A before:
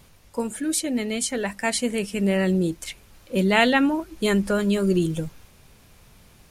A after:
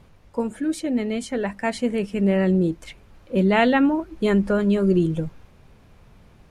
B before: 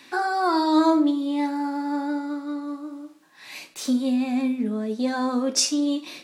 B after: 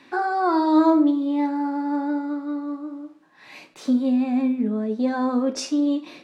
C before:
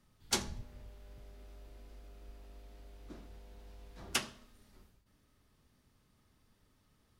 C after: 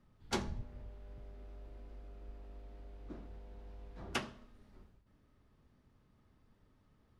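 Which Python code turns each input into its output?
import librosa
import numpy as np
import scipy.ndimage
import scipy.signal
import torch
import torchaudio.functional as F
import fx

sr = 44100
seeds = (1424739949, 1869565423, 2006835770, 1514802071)

y = fx.lowpass(x, sr, hz=1300.0, slope=6)
y = F.gain(torch.from_numpy(y), 2.5).numpy()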